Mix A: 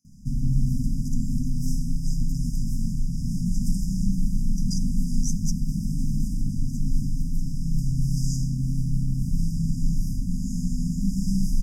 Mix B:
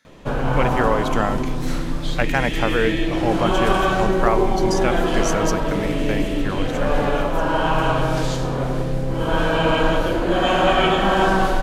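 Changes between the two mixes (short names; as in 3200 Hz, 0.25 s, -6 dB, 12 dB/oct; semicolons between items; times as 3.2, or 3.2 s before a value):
speech +5.0 dB; master: remove brick-wall FIR band-stop 260–4800 Hz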